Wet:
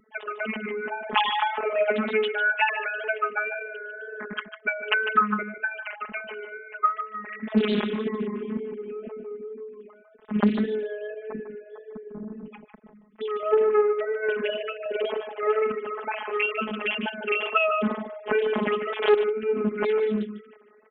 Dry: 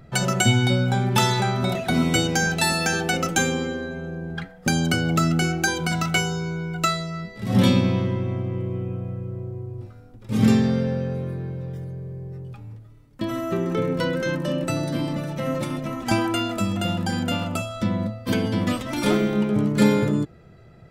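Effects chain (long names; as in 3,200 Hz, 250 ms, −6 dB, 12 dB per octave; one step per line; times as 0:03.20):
three sine waves on the formant tracks
automatic gain control gain up to 12.5 dB
phases set to zero 213 Hz
tape wow and flutter 39 cents
sample-and-hold tremolo
single-tap delay 150 ms −10.5 dB
highs frequency-modulated by the lows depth 0.46 ms
level −4 dB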